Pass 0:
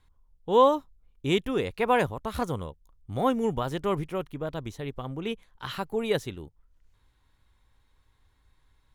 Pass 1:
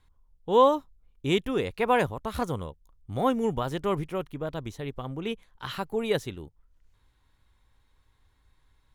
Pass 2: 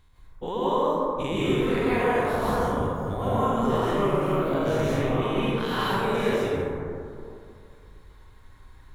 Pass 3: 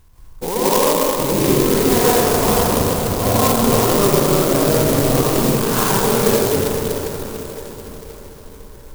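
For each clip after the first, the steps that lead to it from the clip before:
nothing audible
spectral dilation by 0.12 s; compressor 6:1, threshold -31 dBFS, peak gain reduction 18 dB; plate-style reverb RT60 2.5 s, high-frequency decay 0.3×, pre-delay 0.115 s, DRR -9 dB
diffused feedback echo 0.497 s, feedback 51%, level -9.5 dB; clock jitter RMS 0.12 ms; gain +8.5 dB

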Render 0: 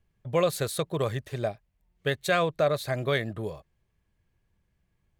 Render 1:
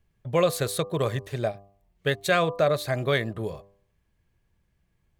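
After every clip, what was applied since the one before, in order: de-hum 99.34 Hz, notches 12; gain +2.5 dB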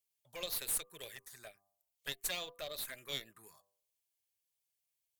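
envelope phaser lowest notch 240 Hz, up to 1600 Hz, full sweep at -19.5 dBFS; differentiator; added harmonics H 8 -20 dB, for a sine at -22 dBFS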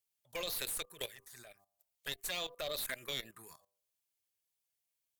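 level quantiser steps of 16 dB; gain +9.5 dB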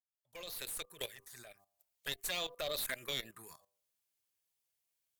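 opening faded in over 1.20 s; gain +1 dB

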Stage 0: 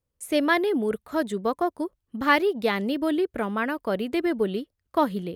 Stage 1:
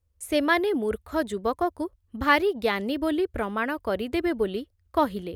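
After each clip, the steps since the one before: resonant low shelf 110 Hz +9.5 dB, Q 3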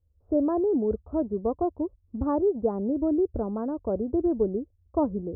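Gaussian blur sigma 12 samples; gain +3 dB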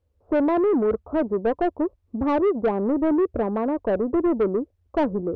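overdrive pedal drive 21 dB, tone 1500 Hz, clips at -12.5 dBFS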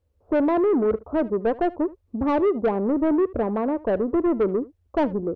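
echo 75 ms -20.5 dB

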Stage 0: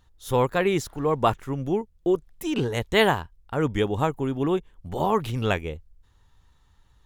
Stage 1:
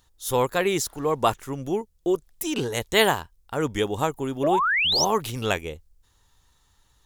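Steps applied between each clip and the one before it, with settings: tone controls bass -5 dB, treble +10 dB; painted sound rise, 4.43–5.05, 530–6400 Hz -22 dBFS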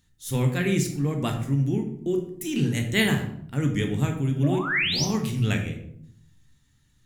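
ten-band EQ 125 Hz +12 dB, 250 Hz +11 dB, 500 Hz -4 dB, 1000 Hz -9 dB, 2000 Hz +8 dB, 8000 Hz +4 dB; on a send at -3 dB: reverb RT60 0.65 s, pre-delay 13 ms; on the sum: gain -8 dB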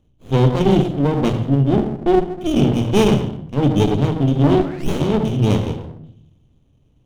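EQ curve 190 Hz 0 dB, 520 Hz +9 dB, 2100 Hz -27 dB, 3100 Hz +13 dB, 4900 Hz -27 dB; running maximum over 33 samples; gain +7.5 dB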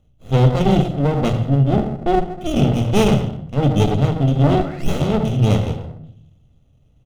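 comb 1.5 ms, depth 44%

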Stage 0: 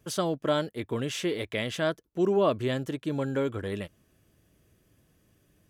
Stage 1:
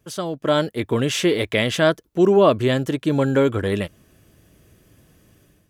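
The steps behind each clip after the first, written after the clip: AGC gain up to 11 dB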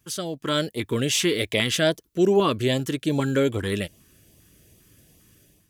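high shelf 2900 Hz +8.5 dB; LFO notch saw up 2.5 Hz 500–1700 Hz; gain -3.5 dB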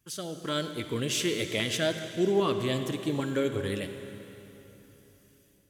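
reverb RT60 3.3 s, pre-delay 43 ms, DRR 7.5 dB; gain -7 dB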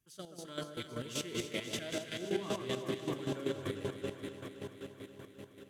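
echo with dull and thin repeats by turns 0.132 s, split 1400 Hz, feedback 88%, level -2 dB; chopper 5.2 Hz, depth 65%, duty 30%; gain -8.5 dB

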